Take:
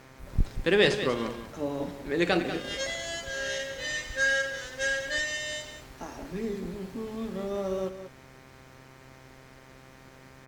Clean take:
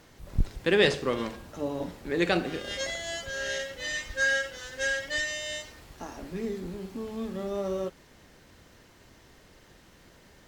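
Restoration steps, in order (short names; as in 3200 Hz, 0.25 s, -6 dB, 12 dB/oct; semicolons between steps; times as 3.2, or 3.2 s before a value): de-hum 131.6 Hz, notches 19; inverse comb 0.19 s -11 dB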